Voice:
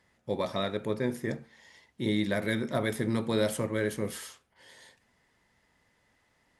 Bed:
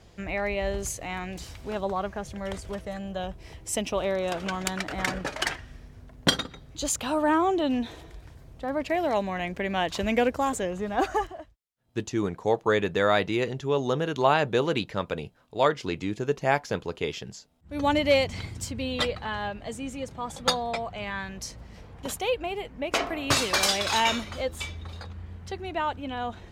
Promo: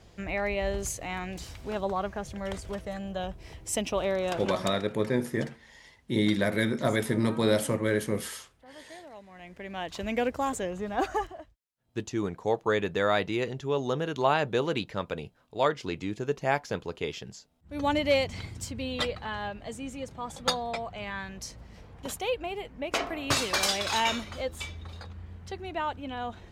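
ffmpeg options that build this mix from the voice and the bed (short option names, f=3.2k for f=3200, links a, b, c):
-filter_complex "[0:a]adelay=4100,volume=3dB[a];[1:a]volume=17.5dB,afade=t=out:st=4.32:d=0.52:silence=0.0944061,afade=t=in:st=9.28:d=1.17:silence=0.11885[b];[a][b]amix=inputs=2:normalize=0"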